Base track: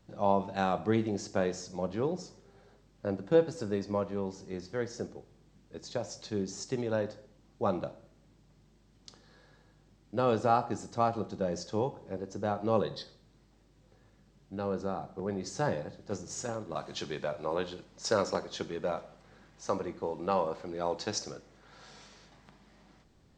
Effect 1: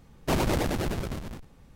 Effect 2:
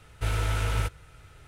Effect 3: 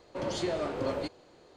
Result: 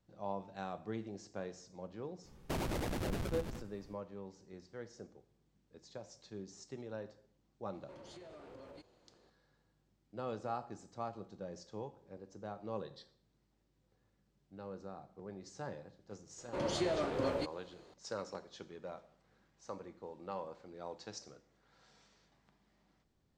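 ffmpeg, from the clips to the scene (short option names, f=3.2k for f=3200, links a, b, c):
-filter_complex "[3:a]asplit=2[a][b];[0:a]volume=-13.5dB[c];[1:a]acompressor=threshold=-28dB:ratio=6:attack=3.2:release=140:knee=1:detection=peak[d];[a]acompressor=threshold=-38dB:ratio=6:attack=3.2:release=140:knee=1:detection=peak[e];[d]atrim=end=1.75,asetpts=PTS-STARTPTS,volume=-6dB,afade=t=in:d=0.05,afade=t=out:st=1.7:d=0.05,adelay=2220[f];[e]atrim=end=1.56,asetpts=PTS-STARTPTS,volume=-12dB,afade=t=in:d=0.004:c=hsin,afade=t=out:st=1.556:d=0.004:c=hsin,adelay=7740[g];[b]atrim=end=1.56,asetpts=PTS-STARTPTS,volume=-2.5dB,afade=t=in:d=0.004:c=hsin,afade=t=out:st=1.556:d=0.004:c=hsin,adelay=16380[h];[c][f][g][h]amix=inputs=4:normalize=0"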